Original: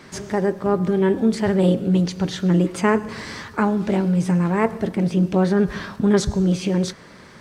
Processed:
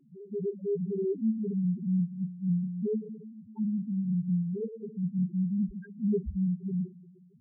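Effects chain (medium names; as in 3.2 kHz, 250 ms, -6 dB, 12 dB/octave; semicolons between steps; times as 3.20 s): 4.43–5.47 s: expander -19 dBFS; FDN reverb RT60 1.7 s, low-frequency decay 1.3×, high-frequency decay 0.7×, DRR 12 dB; loudest bins only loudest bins 1; trim -4 dB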